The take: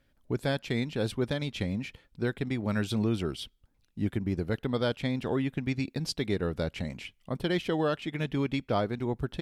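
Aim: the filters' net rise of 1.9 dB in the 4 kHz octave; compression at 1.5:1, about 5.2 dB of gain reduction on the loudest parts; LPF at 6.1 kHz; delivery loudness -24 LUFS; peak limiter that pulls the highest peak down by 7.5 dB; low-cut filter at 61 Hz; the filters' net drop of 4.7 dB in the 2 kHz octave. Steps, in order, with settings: high-pass 61 Hz; low-pass 6.1 kHz; peaking EQ 2 kHz -7.5 dB; peaking EQ 4 kHz +5.5 dB; compression 1.5:1, threshold -39 dBFS; trim +15.5 dB; peak limiter -13 dBFS

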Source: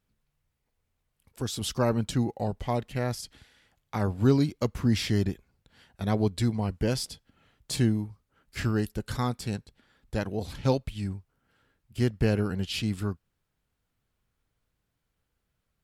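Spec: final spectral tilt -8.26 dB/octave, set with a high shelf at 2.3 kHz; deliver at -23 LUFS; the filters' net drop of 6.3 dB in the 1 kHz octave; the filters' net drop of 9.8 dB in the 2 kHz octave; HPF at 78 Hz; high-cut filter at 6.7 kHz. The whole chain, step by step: high-pass 78 Hz; low-pass 6.7 kHz; peaking EQ 1 kHz -6 dB; peaking EQ 2 kHz -8 dB; treble shelf 2.3 kHz -5.5 dB; trim +7.5 dB

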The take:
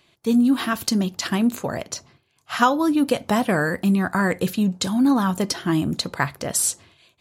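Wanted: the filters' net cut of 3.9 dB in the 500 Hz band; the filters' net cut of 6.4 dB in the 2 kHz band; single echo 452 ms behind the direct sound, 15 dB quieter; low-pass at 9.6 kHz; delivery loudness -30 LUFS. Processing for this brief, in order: low-pass 9.6 kHz; peaking EQ 500 Hz -4.5 dB; peaking EQ 2 kHz -8.5 dB; delay 452 ms -15 dB; trim -7 dB

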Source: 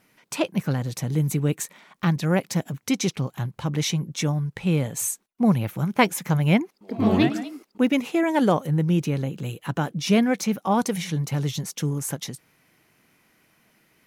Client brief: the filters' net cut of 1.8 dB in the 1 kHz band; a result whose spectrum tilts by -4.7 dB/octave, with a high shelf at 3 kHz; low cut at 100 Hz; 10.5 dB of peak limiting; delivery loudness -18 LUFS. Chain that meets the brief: high-pass 100 Hz; peaking EQ 1 kHz -3 dB; treble shelf 3 kHz +6 dB; trim +8 dB; peak limiter -6.5 dBFS

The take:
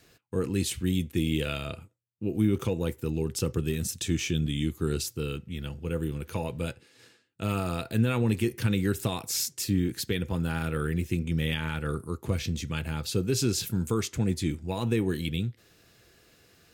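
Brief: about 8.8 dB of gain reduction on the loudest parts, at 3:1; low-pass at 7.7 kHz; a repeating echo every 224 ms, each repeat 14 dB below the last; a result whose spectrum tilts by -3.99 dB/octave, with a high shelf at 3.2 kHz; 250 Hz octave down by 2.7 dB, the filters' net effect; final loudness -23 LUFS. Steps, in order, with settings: low-pass 7.7 kHz; peaking EQ 250 Hz -4 dB; treble shelf 3.2 kHz +9 dB; compression 3:1, threshold -34 dBFS; feedback delay 224 ms, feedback 20%, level -14 dB; trim +13.5 dB

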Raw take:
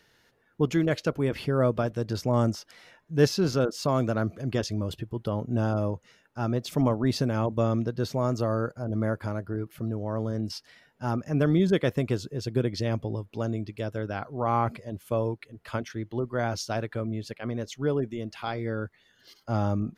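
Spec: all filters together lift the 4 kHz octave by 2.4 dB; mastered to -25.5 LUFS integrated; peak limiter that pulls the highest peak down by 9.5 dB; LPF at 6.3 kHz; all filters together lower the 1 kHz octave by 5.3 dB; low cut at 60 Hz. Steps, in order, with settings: high-pass 60 Hz; low-pass 6.3 kHz; peaking EQ 1 kHz -7.5 dB; peaking EQ 4 kHz +4.5 dB; trim +5 dB; peak limiter -12 dBFS

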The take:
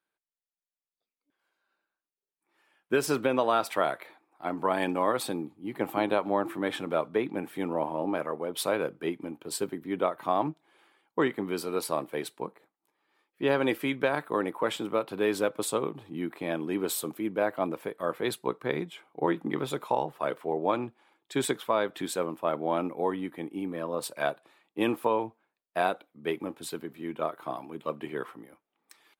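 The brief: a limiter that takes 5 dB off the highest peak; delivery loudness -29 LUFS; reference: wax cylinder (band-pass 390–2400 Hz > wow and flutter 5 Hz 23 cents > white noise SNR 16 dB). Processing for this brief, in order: peak limiter -17 dBFS; band-pass 390–2400 Hz; wow and flutter 5 Hz 23 cents; white noise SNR 16 dB; trim +5.5 dB

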